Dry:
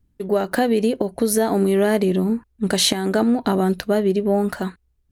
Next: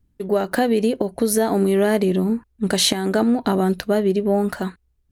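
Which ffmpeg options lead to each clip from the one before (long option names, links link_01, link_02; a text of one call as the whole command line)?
ffmpeg -i in.wav -af anull out.wav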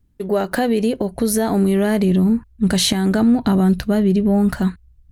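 ffmpeg -i in.wav -filter_complex "[0:a]asubboost=boost=5.5:cutoff=190,asplit=2[link_01][link_02];[link_02]alimiter=limit=-13.5dB:level=0:latency=1:release=13,volume=0.5dB[link_03];[link_01][link_03]amix=inputs=2:normalize=0,volume=-4dB" out.wav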